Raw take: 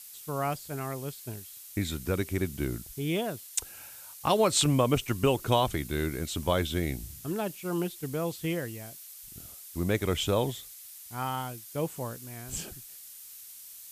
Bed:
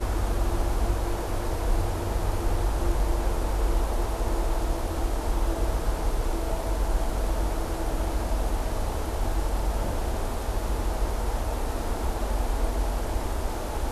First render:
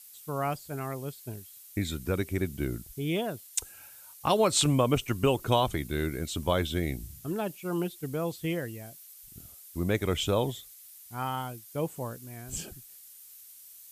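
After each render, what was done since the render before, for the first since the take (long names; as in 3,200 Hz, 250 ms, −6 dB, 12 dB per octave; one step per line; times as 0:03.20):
broadband denoise 6 dB, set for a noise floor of −48 dBFS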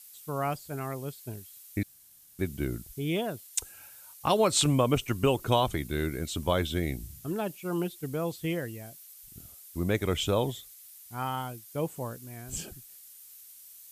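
0:01.83–0:02.39: fill with room tone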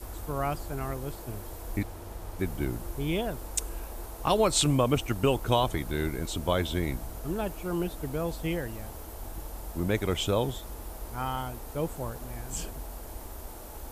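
mix in bed −13.5 dB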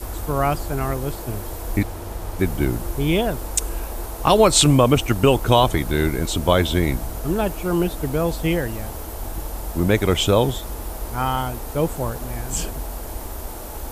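level +10 dB
brickwall limiter −3 dBFS, peak gain reduction 2.5 dB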